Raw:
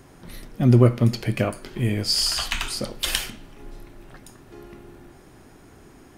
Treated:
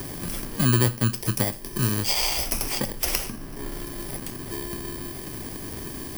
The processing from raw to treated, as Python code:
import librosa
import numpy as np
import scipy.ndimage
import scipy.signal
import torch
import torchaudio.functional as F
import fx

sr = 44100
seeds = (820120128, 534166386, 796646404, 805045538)

y = fx.bit_reversed(x, sr, seeds[0], block=32)
y = fx.band_squash(y, sr, depth_pct=70)